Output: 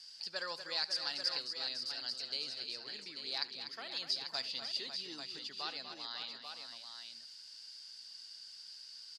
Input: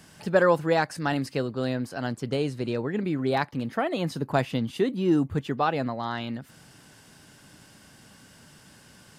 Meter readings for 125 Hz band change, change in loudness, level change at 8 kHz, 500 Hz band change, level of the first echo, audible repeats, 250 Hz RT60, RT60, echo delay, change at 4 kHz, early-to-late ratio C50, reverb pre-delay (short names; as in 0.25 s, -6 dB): -36.5 dB, -12.5 dB, -5.0 dB, -25.5 dB, -19.0 dB, 4, none, none, 73 ms, +4.5 dB, none, none